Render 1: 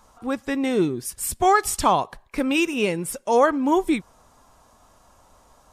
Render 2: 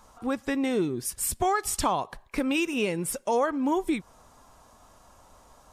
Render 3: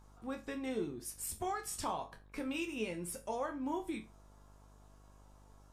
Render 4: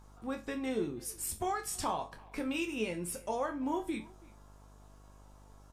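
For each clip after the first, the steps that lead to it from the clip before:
compressor 2.5:1, threshold -25 dBFS, peak gain reduction 9 dB
resonator bank D2 minor, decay 0.27 s; buzz 50 Hz, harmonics 35, -59 dBFS -7 dB/oct; gain -1.5 dB
speakerphone echo 0.33 s, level -22 dB; gain +3.5 dB

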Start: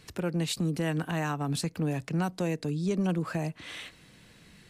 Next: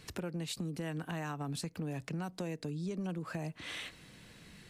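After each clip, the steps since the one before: compressor 4:1, threshold -37 dBFS, peak gain reduction 11 dB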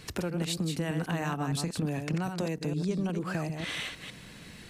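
reverse delay 0.152 s, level -6 dB; gain +6.5 dB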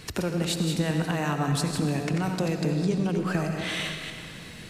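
reverb RT60 2.3 s, pre-delay 45 ms, DRR 5.5 dB; gain +4 dB

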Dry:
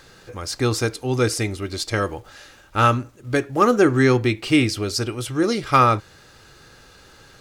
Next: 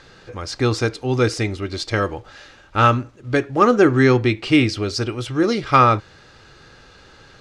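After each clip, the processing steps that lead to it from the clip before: LPF 5200 Hz 12 dB/oct; gain +2 dB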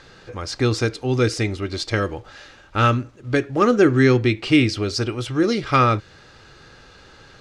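dynamic EQ 900 Hz, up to -7 dB, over -30 dBFS, Q 1.3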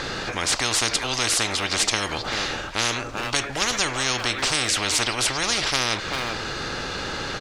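speakerphone echo 0.39 s, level -19 dB; spectral compressor 10:1

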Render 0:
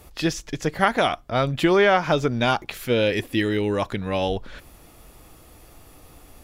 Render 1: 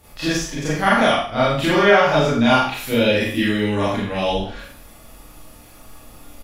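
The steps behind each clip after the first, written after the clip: bell 410 Hz -5 dB 0.4 oct; doubler 47 ms -6 dB; Schroeder reverb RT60 0.47 s, combs from 27 ms, DRR -8.5 dB; gain -4.5 dB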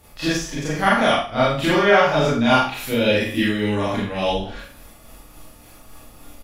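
tremolo 3.5 Hz, depth 29%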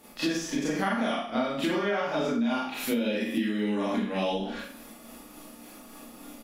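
resonant low shelf 150 Hz -14 dB, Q 3; compressor 10:1, threshold -23 dBFS, peak gain reduction 15.5 dB; gain -1.5 dB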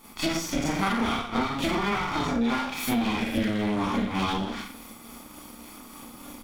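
minimum comb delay 0.89 ms; in parallel at -4.5 dB: overloaded stage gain 27 dB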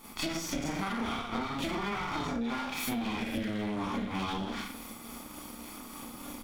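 compressor 4:1, threshold -32 dBFS, peak gain reduction 9.5 dB

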